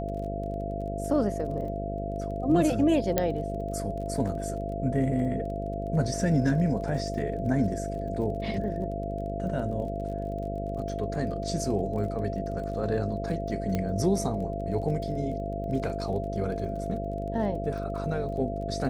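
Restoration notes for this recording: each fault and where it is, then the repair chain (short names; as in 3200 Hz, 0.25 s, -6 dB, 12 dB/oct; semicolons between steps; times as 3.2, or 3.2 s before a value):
buzz 50 Hz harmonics 13 -34 dBFS
crackle 25/s -38 dBFS
tone 680 Hz -34 dBFS
3.18 pop -9 dBFS
13.75 pop -16 dBFS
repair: de-click; de-hum 50 Hz, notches 13; notch 680 Hz, Q 30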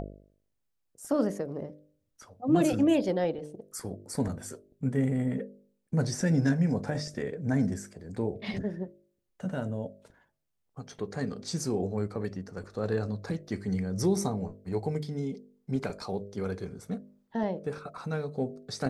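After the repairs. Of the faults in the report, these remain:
none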